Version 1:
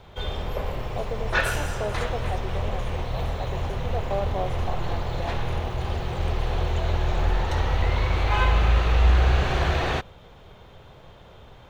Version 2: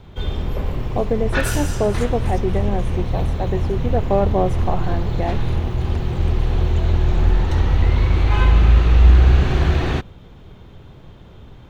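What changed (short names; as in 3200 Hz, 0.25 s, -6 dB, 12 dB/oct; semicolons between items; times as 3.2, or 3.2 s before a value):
speech +10.5 dB; second sound +8.0 dB; master: add resonant low shelf 410 Hz +7.5 dB, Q 1.5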